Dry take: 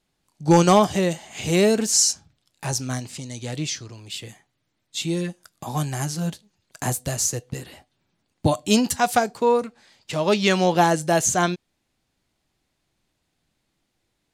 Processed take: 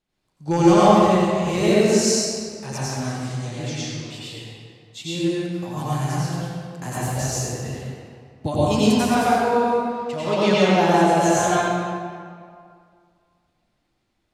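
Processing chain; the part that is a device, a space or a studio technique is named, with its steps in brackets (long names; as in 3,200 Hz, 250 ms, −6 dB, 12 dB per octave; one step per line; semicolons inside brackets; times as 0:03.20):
swimming-pool hall (convolution reverb RT60 2.1 s, pre-delay 83 ms, DRR −9 dB; high-shelf EQ 5,800 Hz −7 dB)
level −7 dB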